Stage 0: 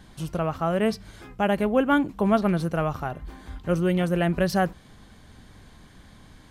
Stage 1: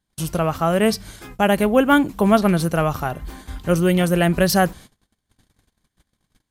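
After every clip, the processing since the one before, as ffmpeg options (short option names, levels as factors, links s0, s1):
-af "agate=range=0.0178:threshold=0.00631:ratio=16:detection=peak,crystalizer=i=2:c=0,volume=1.88"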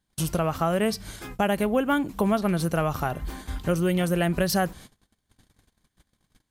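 -af "acompressor=threshold=0.0708:ratio=2.5"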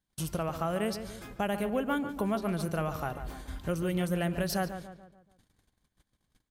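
-filter_complex "[0:a]asplit=2[s0][s1];[s1]adelay=144,lowpass=f=2500:p=1,volume=0.335,asplit=2[s2][s3];[s3]adelay=144,lowpass=f=2500:p=1,volume=0.46,asplit=2[s4][s5];[s5]adelay=144,lowpass=f=2500:p=1,volume=0.46,asplit=2[s6][s7];[s7]adelay=144,lowpass=f=2500:p=1,volume=0.46,asplit=2[s8][s9];[s9]adelay=144,lowpass=f=2500:p=1,volume=0.46[s10];[s0][s2][s4][s6][s8][s10]amix=inputs=6:normalize=0,volume=0.422"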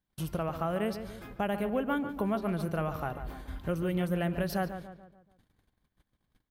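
-af "equalizer=f=7300:w=0.76:g=-10.5"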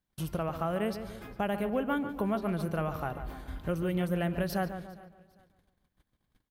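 -af "aecho=1:1:403|806:0.0708|0.0234"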